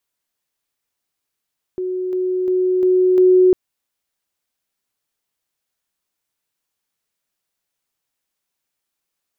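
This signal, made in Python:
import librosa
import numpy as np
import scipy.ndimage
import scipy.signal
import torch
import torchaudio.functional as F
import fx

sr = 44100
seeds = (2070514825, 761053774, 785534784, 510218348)

y = fx.level_ladder(sr, hz=368.0, from_db=-20.0, step_db=3.0, steps=5, dwell_s=0.35, gap_s=0.0)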